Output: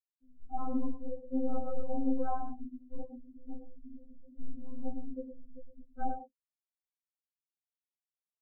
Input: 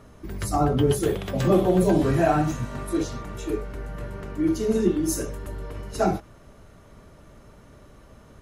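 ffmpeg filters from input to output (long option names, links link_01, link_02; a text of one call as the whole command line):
ffmpeg -i in.wav -filter_complex "[0:a]afwtdn=0.0355,asettb=1/sr,asplit=3[link_01][link_02][link_03];[link_01]atrim=end=3.124[link_04];[link_02]atrim=start=3.12:end=5.84,asetpts=PTS-STARTPTS,afade=type=in:duration=0.004:curve=qsin,afade=type=out:start_time=2.716:duration=0.004:curve=qsin,acrusher=bits=6:dc=4:mix=0:aa=0.000001[link_05];[link_03]atrim=start=5.836[link_06];[link_04][link_05]acrossfade=duration=0.004:curve1=hsin:curve2=qsin[link_07];[link_07][link_06]acrossfade=duration=0.004:curve1=qsin:curve2=hsin,aeval=exprs='(tanh(11.2*val(0)+0.55)-tanh(0.55))/11.2':channel_layout=same,highshelf=frequency=5800:gain=-11.5,bandreject=frequency=50:width_type=h:width=6,bandreject=frequency=100:width_type=h:width=6,bandreject=frequency=150:width_type=h:width=6,bandreject=frequency=200:width_type=h:width=6,bandreject=frequency=250:width_type=h:width=6,bandreject=frequency=300:width_type=h:width=6,bandreject=frequency=350:width_type=h:width=6,bandreject=frequency=400:width_type=h:width=6,bandreject=frequency=450:width_type=h:width=6,afftfilt=real='re*gte(hypot(re,im),0.0708)':imag='im*gte(hypot(re,im),0.0708)':win_size=1024:overlap=0.75,equalizer=frequency=1400:width=0.6:gain=-8,asplit=2[link_08][link_09];[link_09]adelay=110,highpass=300,lowpass=3400,asoftclip=type=hard:threshold=-17dB,volume=-9dB[link_10];[link_08][link_10]amix=inputs=2:normalize=0,acrossover=split=360|3000[link_11][link_12][link_13];[link_12]acompressor=threshold=-23dB:ratio=2.5[link_14];[link_11][link_14][link_13]amix=inputs=3:normalize=0,afftfilt=real='re*3.46*eq(mod(b,12),0)':imag='im*3.46*eq(mod(b,12),0)':win_size=2048:overlap=0.75" out.wav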